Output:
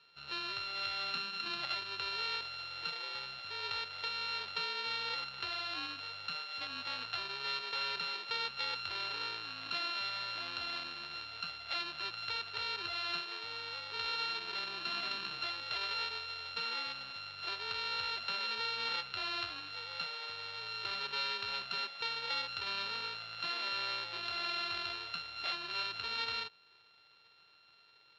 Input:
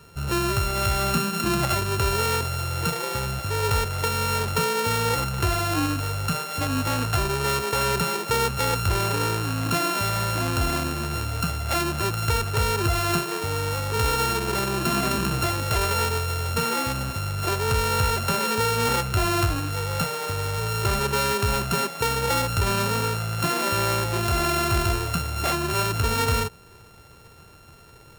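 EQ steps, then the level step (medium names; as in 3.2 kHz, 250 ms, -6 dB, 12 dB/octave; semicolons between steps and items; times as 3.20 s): band-pass filter 4.1 kHz, Q 3.3; distance through air 330 m; +6.5 dB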